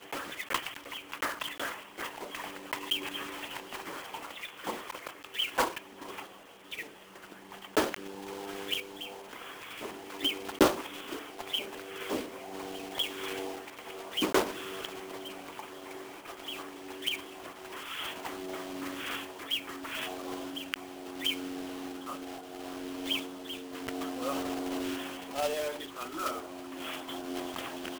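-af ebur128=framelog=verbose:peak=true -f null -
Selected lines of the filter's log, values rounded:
Integrated loudness:
  I:         -35.9 LUFS
  Threshold: -46.0 LUFS
Loudness range:
  LRA:         4.6 LU
  Threshold: -55.9 LUFS
  LRA low:   -37.8 LUFS
  LRA high:  -33.3 LUFS
True peak:
  Peak:       -8.4 dBFS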